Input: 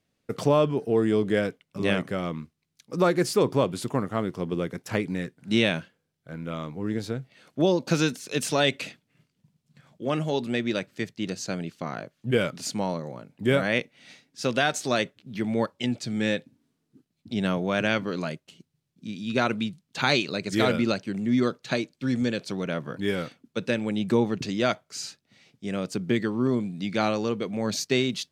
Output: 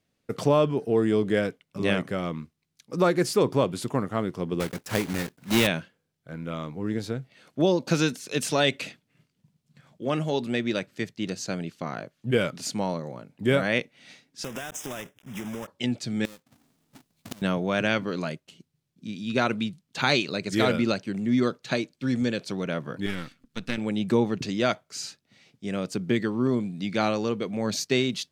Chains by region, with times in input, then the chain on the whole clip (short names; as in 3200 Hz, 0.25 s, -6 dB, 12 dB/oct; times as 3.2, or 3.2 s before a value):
4.6–5.68 block floating point 3-bit + de-esser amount 30%
14.44–15.68 block floating point 3-bit + Butterworth band-stop 4300 Hz, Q 2.6 + compressor 16:1, threshold -30 dBFS
16.25–17.42 half-waves squared off + high shelf 2900 Hz +9 dB + flipped gate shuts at -20 dBFS, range -28 dB
23.06–23.78 half-wave gain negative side -12 dB + band shelf 590 Hz -8 dB + upward compressor, threshold -52 dBFS
whole clip: dry